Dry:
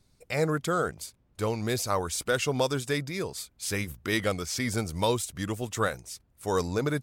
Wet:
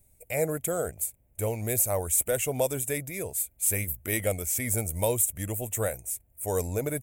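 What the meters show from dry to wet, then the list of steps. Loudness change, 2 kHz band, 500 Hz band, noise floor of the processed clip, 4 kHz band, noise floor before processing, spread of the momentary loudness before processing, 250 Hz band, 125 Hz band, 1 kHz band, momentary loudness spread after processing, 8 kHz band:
+1.5 dB, −4.5 dB, 0.0 dB, −64 dBFS, −10.0 dB, −67 dBFS, 7 LU, −4.5 dB, −0.5 dB, −6.5 dB, 8 LU, +8.0 dB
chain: drawn EQ curve 100 Hz 0 dB, 150 Hz −8 dB, 380 Hz −7 dB, 640 Hz +1 dB, 1,200 Hz −17 dB, 2,300 Hz −3 dB, 4,700 Hz −20 dB, 7,600 Hz +5 dB, 14,000 Hz +15 dB
level +3 dB

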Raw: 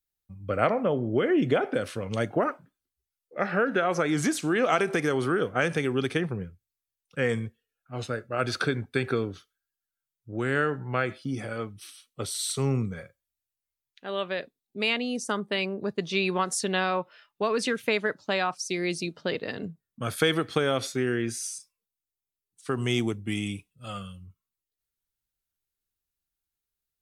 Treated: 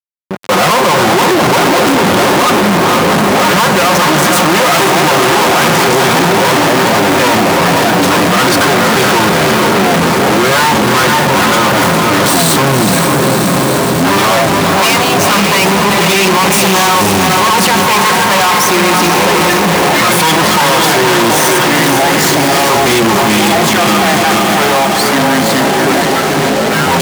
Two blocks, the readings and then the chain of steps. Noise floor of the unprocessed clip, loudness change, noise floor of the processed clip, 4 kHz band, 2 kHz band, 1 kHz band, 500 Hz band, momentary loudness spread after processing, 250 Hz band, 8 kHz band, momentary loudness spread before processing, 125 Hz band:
below −85 dBFS, +19.5 dB, −11 dBFS, +23.5 dB, +21.0 dB, +25.0 dB, +17.5 dB, 2 LU, +19.0 dB, +24.5 dB, 14 LU, +17.5 dB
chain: lower of the sound and its delayed copy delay 5.6 ms
graphic EQ with 15 bands 160 Hz −5 dB, 1,000 Hz +12 dB, 2,500 Hz +3 dB
delay with pitch and tempo change per echo 149 ms, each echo −5 semitones, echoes 3, each echo −6 dB
parametric band 180 Hz +9.5 dB 0.41 octaves
mains-hum notches 60/120/180/240 Hz
feedback delay with all-pass diffusion 482 ms, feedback 61%, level −6.5 dB
fuzz pedal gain 45 dB, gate −42 dBFS
leveller curve on the samples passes 3
high-pass filter 120 Hz 12 dB per octave
level +2.5 dB

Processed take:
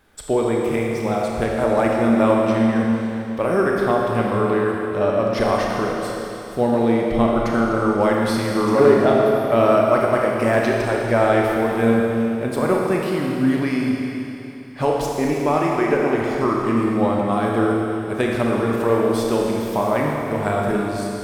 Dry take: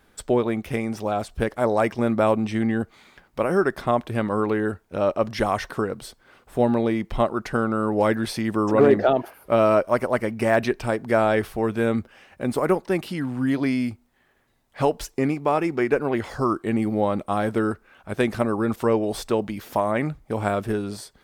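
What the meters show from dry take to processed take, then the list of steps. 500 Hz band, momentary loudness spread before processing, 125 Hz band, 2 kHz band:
+4.5 dB, 8 LU, +4.0 dB, +4.0 dB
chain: four-comb reverb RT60 3.1 s, combs from 27 ms, DRR −2 dB

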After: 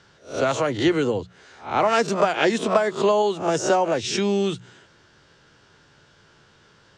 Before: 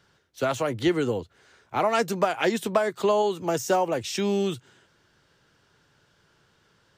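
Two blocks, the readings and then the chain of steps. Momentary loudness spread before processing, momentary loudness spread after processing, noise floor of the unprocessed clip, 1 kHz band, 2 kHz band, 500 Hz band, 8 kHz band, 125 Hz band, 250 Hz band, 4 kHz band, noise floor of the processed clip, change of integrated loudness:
6 LU, 7 LU, −65 dBFS, +4.0 dB, +4.5 dB, +3.5 dB, +4.0 dB, +2.5 dB, +3.5 dB, +5.0 dB, −56 dBFS, +4.0 dB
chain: peak hold with a rise ahead of every peak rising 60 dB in 0.32 s
low-pass filter 7,800 Hz 24 dB per octave
mains-hum notches 60/120/180 Hz
in parallel at −1 dB: downward compressor, threshold −36 dBFS, peak gain reduction 18.5 dB
on the sum: level +1.5 dB

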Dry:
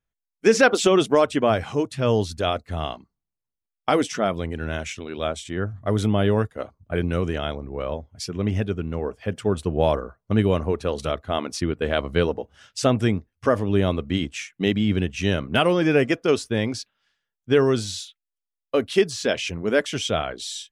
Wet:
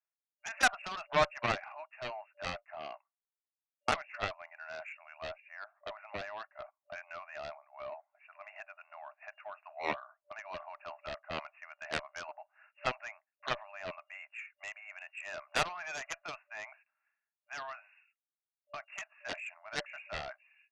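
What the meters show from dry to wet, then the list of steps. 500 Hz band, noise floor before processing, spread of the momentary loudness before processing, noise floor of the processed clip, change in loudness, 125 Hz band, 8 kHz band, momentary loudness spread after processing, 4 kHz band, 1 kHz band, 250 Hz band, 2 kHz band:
−20.5 dB, below −85 dBFS, 11 LU, below −85 dBFS, −16.0 dB, −27.0 dB, −14.5 dB, 16 LU, −14.0 dB, −10.0 dB, −29.0 dB, −9.0 dB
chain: brick-wall band-pass 590–2,800 Hz
harmonic generator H 3 −16 dB, 7 −15 dB, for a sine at −8 dBFS
level −6 dB

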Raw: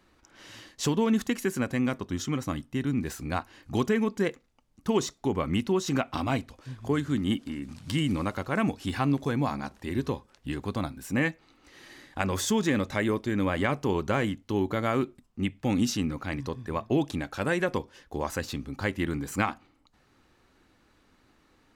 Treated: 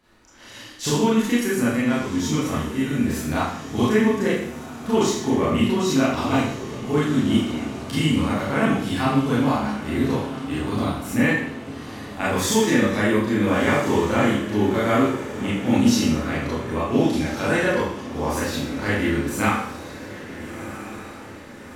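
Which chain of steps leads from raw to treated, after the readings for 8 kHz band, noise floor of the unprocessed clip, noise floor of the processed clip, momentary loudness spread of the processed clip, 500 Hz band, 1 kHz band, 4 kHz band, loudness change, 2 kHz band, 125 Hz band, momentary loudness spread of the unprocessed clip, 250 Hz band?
+8.0 dB, −65 dBFS, −39 dBFS, 14 LU, +7.5 dB, +7.5 dB, +8.0 dB, +7.5 dB, +8.0 dB, +5.5 dB, 8 LU, +8.0 dB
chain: parametric band 11,000 Hz +3 dB 0.29 octaves
feedback delay with all-pass diffusion 1,375 ms, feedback 54%, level −12.5 dB
four-comb reverb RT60 0.65 s, combs from 26 ms, DRR −9 dB
level −2 dB

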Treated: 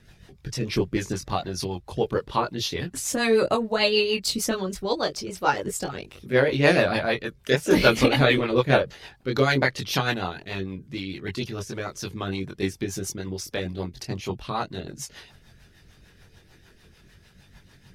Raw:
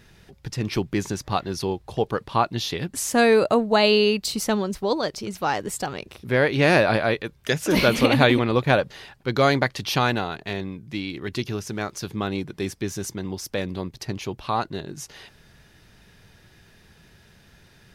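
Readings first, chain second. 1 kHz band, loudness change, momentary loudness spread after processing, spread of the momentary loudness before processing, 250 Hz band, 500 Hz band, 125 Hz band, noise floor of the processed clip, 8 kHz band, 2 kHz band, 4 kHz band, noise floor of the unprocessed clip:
−3.0 dB, −1.5 dB, 14 LU, 14 LU, −2.5 dB, −1.5 dB, −1.5 dB, −55 dBFS, −0.5 dB, −1.0 dB, −0.5 dB, −55 dBFS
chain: multi-voice chorus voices 4, 0.16 Hz, delay 22 ms, depth 1.4 ms
rotating-speaker cabinet horn 6.7 Hz
harmonic and percussive parts rebalanced percussive +6 dB

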